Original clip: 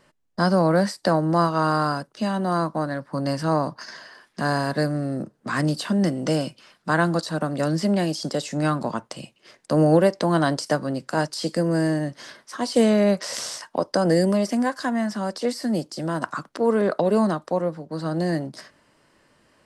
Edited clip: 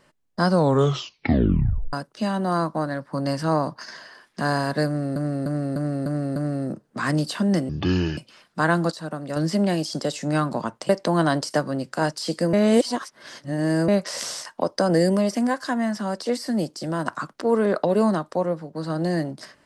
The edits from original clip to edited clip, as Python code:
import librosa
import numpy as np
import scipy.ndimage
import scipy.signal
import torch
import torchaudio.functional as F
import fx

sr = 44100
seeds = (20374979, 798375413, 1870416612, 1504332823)

y = fx.edit(x, sr, fx.tape_stop(start_s=0.49, length_s=1.44),
    fx.repeat(start_s=4.86, length_s=0.3, count=6),
    fx.speed_span(start_s=6.19, length_s=0.28, speed=0.58),
    fx.clip_gain(start_s=7.22, length_s=0.44, db=-6.0),
    fx.cut(start_s=9.19, length_s=0.86),
    fx.reverse_span(start_s=11.69, length_s=1.35), tone=tone)